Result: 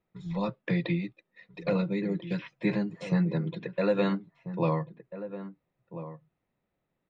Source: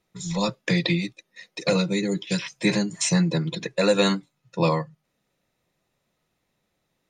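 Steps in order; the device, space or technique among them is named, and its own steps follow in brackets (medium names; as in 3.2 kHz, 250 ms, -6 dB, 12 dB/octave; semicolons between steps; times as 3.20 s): shout across a valley (distance through air 460 m; echo from a far wall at 230 m, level -12 dB); trim -4.5 dB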